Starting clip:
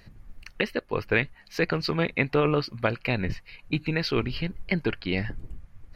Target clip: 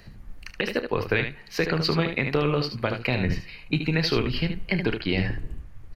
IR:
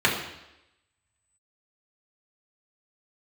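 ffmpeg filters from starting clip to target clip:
-filter_complex "[0:a]acrossover=split=120|3000[link_01][link_02][link_03];[link_02]acompressor=threshold=-25dB:ratio=6[link_04];[link_01][link_04][link_03]amix=inputs=3:normalize=0,aecho=1:1:31|75:0.211|0.398,asplit=2[link_05][link_06];[1:a]atrim=start_sample=2205[link_07];[link_06][link_07]afir=irnorm=-1:irlink=0,volume=-34.5dB[link_08];[link_05][link_08]amix=inputs=2:normalize=0,alimiter=level_in=12dB:limit=-1dB:release=50:level=0:latency=1,volume=-8dB"

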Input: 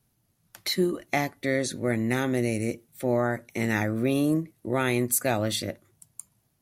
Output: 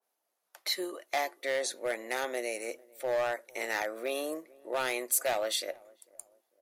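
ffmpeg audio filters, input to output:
ffmpeg -i in.wav -filter_complex "[0:a]highpass=frequency=540:width=0.5412,highpass=frequency=540:width=1.3066,tiltshelf=frequency=970:gain=6,asoftclip=type=hard:threshold=-23dB,asplit=2[link_01][link_02];[link_02]adelay=448,lowpass=frequency=920:poles=1,volume=-23dB,asplit=2[link_03][link_04];[link_04]adelay=448,lowpass=frequency=920:poles=1,volume=0.42,asplit=2[link_05][link_06];[link_06]adelay=448,lowpass=frequency=920:poles=1,volume=0.42[link_07];[link_03][link_05][link_07]amix=inputs=3:normalize=0[link_08];[link_01][link_08]amix=inputs=2:normalize=0,adynamicequalizer=threshold=0.00631:dfrequency=2000:dqfactor=0.7:tfrequency=2000:tqfactor=0.7:attack=5:release=100:ratio=0.375:range=3:mode=boostabove:tftype=highshelf,volume=-2dB" out.wav

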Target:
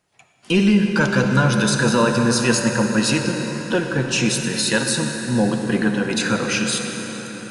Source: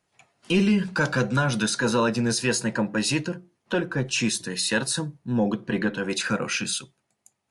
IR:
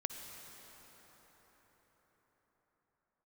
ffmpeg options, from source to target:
-filter_complex "[1:a]atrim=start_sample=2205[link_01];[0:a][link_01]afir=irnorm=-1:irlink=0,volume=5.5dB"

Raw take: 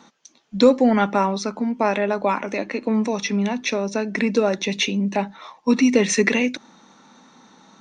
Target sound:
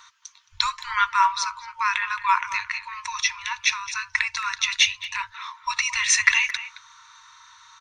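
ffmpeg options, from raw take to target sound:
ffmpeg -i in.wav -filter_complex "[0:a]afftfilt=real='re*(1-between(b*sr/4096,110,910))':imag='im*(1-between(b*sr/4096,110,910))':win_size=4096:overlap=0.75,asplit=2[link_01][link_02];[link_02]adelay=220,highpass=300,lowpass=3400,asoftclip=type=hard:threshold=-15dB,volume=-13dB[link_03];[link_01][link_03]amix=inputs=2:normalize=0,volume=4.5dB" out.wav

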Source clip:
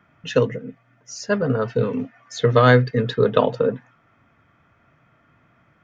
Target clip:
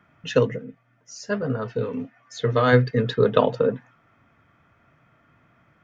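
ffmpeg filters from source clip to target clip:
ffmpeg -i in.wav -filter_complex "[0:a]asplit=3[link_01][link_02][link_03];[link_01]afade=type=out:start_time=0.63:duration=0.02[link_04];[link_02]flanger=delay=7.7:depth=4.5:regen=-58:speed=1.3:shape=sinusoidal,afade=type=in:start_time=0.63:duration=0.02,afade=type=out:start_time=2.72:duration=0.02[link_05];[link_03]afade=type=in:start_time=2.72:duration=0.02[link_06];[link_04][link_05][link_06]amix=inputs=3:normalize=0,volume=-1dB" out.wav

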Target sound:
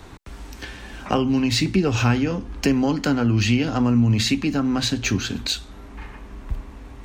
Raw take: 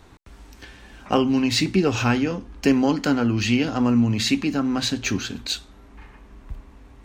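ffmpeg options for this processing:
ffmpeg -i in.wav -filter_complex "[0:a]acrossover=split=130[link_01][link_02];[link_02]acompressor=threshold=-33dB:ratio=2[link_03];[link_01][link_03]amix=inputs=2:normalize=0,volume=7.5dB" out.wav

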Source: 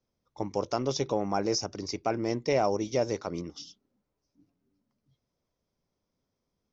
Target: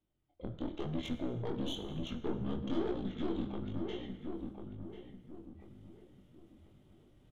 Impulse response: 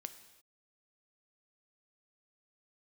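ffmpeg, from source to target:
-filter_complex "[0:a]asetrate=28595,aresample=44100,atempo=1.54221,areverse,acompressor=mode=upward:threshold=-48dB:ratio=2.5,areverse,aeval=exprs='(tanh(25.1*val(0)+0.65)-tanh(0.65))/25.1':channel_layout=same,flanger=delay=17.5:depth=5.9:speed=1.1,asplit=2[link_01][link_02];[link_02]acompressor=threshold=-46dB:ratio=6,volume=0.5dB[link_03];[link_01][link_03]amix=inputs=2:normalize=0,highshelf=frequency=2100:gain=-7.5,asplit=2[link_04][link_05];[link_05]adelay=958,lowpass=frequency=1200:poles=1,volume=-5dB,asplit=2[link_06][link_07];[link_07]adelay=958,lowpass=frequency=1200:poles=1,volume=0.36,asplit=2[link_08][link_09];[link_09]adelay=958,lowpass=frequency=1200:poles=1,volume=0.36,asplit=2[link_10][link_11];[link_11]adelay=958,lowpass=frequency=1200:poles=1,volume=0.36[link_12];[link_04][link_06][link_08][link_10][link_12]amix=inputs=5:normalize=0,asetrate=40517,aresample=44100[link_13];[1:a]atrim=start_sample=2205[link_14];[link_13][link_14]afir=irnorm=-1:irlink=0,volume=3dB"

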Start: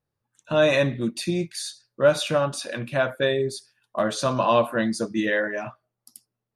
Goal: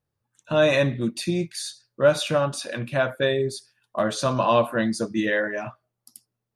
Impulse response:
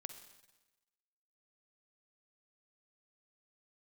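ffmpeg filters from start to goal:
-af "equalizer=frequency=90:width=1.2:gain=3.5"

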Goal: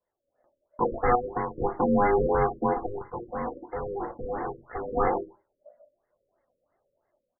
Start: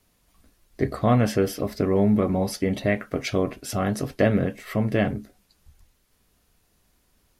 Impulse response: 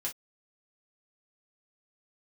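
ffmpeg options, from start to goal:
-filter_complex "[0:a]afwtdn=0.0355,highshelf=frequency=2300:gain=7.5,dynaudnorm=framelen=140:gausssize=5:maxgain=11dB,asettb=1/sr,asplit=3[link_01][link_02][link_03];[link_01]atrim=end=2.864[link_04];[link_02]atrim=start=2.86:end=4.97,asetpts=PTS-STARTPTS,afade=type=in:duration=0.004:curve=qsin,afade=type=out:start_time=2.106:duration=0.004:curve=qsin,asoftclip=type=hard:threshold=-28dB[link_05];[link_03]atrim=start=4.966[link_06];[link_04][link_05]acrossfade=duration=0.004:curve1=hsin:curve2=qsin[link_07];[link_07][link_06]acrossfade=duration=0.004:curve1=qsin:curve2=hsin,asplit=2[link_08][link_09];[link_09]adelay=120,highpass=300,lowpass=3400,asoftclip=type=hard:threshold=-25.5dB,volume=-17dB[link_10];[link_08][link_10]amix=inputs=2:normalize=0,aeval=exprs='val(0)*sin(2*PI*610*n/s)':channel_layout=same,asoftclip=type=tanh:threshold=-18dB,flanger=delay=1.9:depth=2.2:regen=33:speed=1.3:shape=sinusoidal,asplit=2[link_11][link_12];[1:a]atrim=start_sample=2205,asetrate=29988,aresample=44100[link_13];[link_12][link_13]afir=irnorm=-1:irlink=0,volume=-5dB[link_14];[link_11][link_14]amix=inputs=2:normalize=0,asettb=1/sr,asplit=3[link_15][link_16][link_17];[link_15]atrim=end=1.154[link_18];[link_16]atrim=start=1.15:end=1.55,asetpts=PTS-STARTPTS,afade=type=in:duration=0.004:curve=qsin,afade=type=out:start_time=0.396:duration=0.004:curve=qsin,acompressor=threshold=-25dB:ratio=10[link_19];[link_17]atrim=start=1.546[link_20];[link_18][link_19]acrossfade=duration=0.004:curve1=hsin:curve2=qsin[link_21];[link_21][link_20]acrossfade=duration=0.004:curve1=qsin:curve2=hsin,afftfilt=real='re*lt(b*sr/1024,570*pow(2200/570,0.5+0.5*sin(2*PI*3*pts/sr)))':imag='im*lt(b*sr/1024,570*pow(2200/570,0.5+0.5*sin(2*PI*3*pts/sr)))':win_size=1024:overlap=0.75"

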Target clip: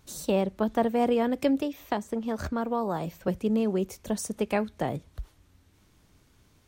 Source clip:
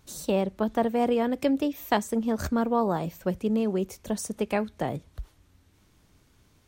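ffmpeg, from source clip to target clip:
ffmpeg -i in.wav -filter_complex "[0:a]asettb=1/sr,asplit=3[link_01][link_02][link_03];[link_01]atrim=end=1.614[link_04];[link_02]atrim=start=1.61:end=3.28,asetpts=PTS-STARTPTS,afade=type=in:duration=0.004:curve=qsin,afade=type=out:start_time=1.666:duration=0.004:curve=qsin,acrossover=split=530|1300|5100[link_05][link_06][link_07][link_08];[link_05]acompressor=threshold=-30dB:ratio=4[link_09];[link_06]acompressor=threshold=-30dB:ratio=4[link_10];[link_07]acompressor=threshold=-41dB:ratio=4[link_11];[link_08]acompressor=threshold=-54dB:ratio=4[link_12];[link_09][link_10][link_11][link_12]amix=inputs=4:normalize=0[link_13];[link_03]atrim=start=3.276[link_14];[link_04][link_13]acrossfade=duration=0.004:curve1=hsin:curve2=qsin[link_15];[link_15][link_14]acrossfade=duration=0.004:curve1=qsin:curve2=hsin" out.wav

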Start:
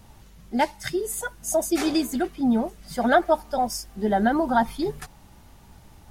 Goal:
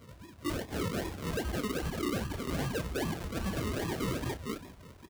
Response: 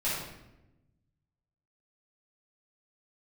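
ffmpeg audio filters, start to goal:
-filter_complex "[0:a]afftfilt=real='real(if(lt(b,960),b+48*(1-2*mod(floor(b/48),2)),b),0)':imag='imag(if(lt(b,960),b+48*(1-2*mod(floor(b/48),2)),b),0)':win_size=2048:overlap=0.75,lowshelf=frequency=200:width_type=q:width=1.5:gain=11.5,aecho=1:1:48|61|64|80|293|545:0.158|0.188|0.106|0.251|0.211|0.335,adynamicequalizer=threshold=0.0224:dfrequency=1700:dqfactor=2.6:tfrequency=1700:tqfactor=2.6:attack=5:release=100:ratio=0.375:range=3:mode=boostabove:tftype=bell,acompressor=threshold=-24dB:ratio=8,atempo=1.2,flanger=delay=20:depth=5:speed=0.33,acrusher=samples=41:mix=1:aa=0.000001:lfo=1:lforange=24.6:lforate=2.5,asoftclip=type=hard:threshold=-29.5dB,afreqshift=-95,highpass=51,asplit=2[link_01][link_02];[link_02]adelay=31,volume=-11dB[link_03];[link_01][link_03]amix=inputs=2:normalize=0"

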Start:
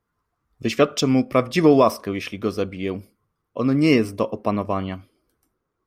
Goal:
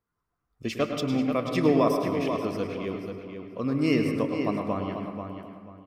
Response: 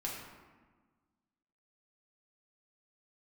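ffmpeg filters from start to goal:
-filter_complex "[0:a]asettb=1/sr,asplit=3[link_01][link_02][link_03];[link_01]atrim=end=0.764[link_04];[link_02]atrim=start=0.76:end=1.55,asetpts=PTS-STARTPTS,afade=type=in:duration=0.004:curve=qsin,afade=type=out:start_time=0.786:duration=0.004:curve=qsin,equalizer=frequency=400:width_type=o:width=0.67:gain=-4,equalizer=frequency=1600:width_type=o:width=0.67:gain=-4,equalizer=frequency=6300:width_type=o:width=0.67:gain=-8[link_05];[link_03]atrim=start=1.546[link_06];[link_04][link_05]acrossfade=duration=0.004:curve1=hsin:curve2=qsin[link_07];[link_07][link_06]acrossfade=duration=0.004:curve1=qsin:curve2=hsin,asplit=2[link_08][link_09];[link_09]adelay=486,lowpass=frequency=4200:poles=1,volume=-7dB,asplit=2[link_10][link_11];[link_11]adelay=486,lowpass=frequency=4200:poles=1,volume=0.26,asplit=2[link_12][link_13];[link_13]adelay=486,lowpass=frequency=4200:poles=1,volume=0.26[link_14];[link_08][link_10][link_12][link_14]amix=inputs=4:normalize=0,asplit=2[link_15][link_16];[1:a]atrim=start_sample=2205,highshelf=frequency=8900:gain=-7,adelay=104[link_17];[link_16][link_17]afir=irnorm=-1:irlink=0,volume=-6dB[link_18];[link_15][link_18]amix=inputs=2:normalize=0,volume=-8dB"

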